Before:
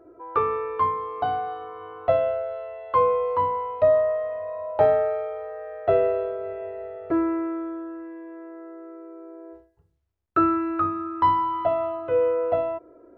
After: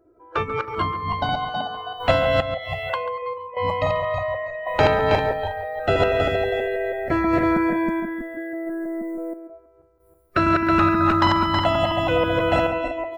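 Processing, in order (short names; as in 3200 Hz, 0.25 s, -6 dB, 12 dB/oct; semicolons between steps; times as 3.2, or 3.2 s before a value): regenerating reverse delay 0.161 s, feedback 58%, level -1.5 dB; low shelf 220 Hz +10.5 dB; 2.4–3.57 compressor 16:1, threshold -31 dBFS, peak gain reduction 20.5 dB; random-step tremolo 1.5 Hz, depth 70%; spectral noise reduction 21 dB; high shelf 3000 Hz +10.5 dB; echo 0.139 s -16.5 dB; spectral compressor 2:1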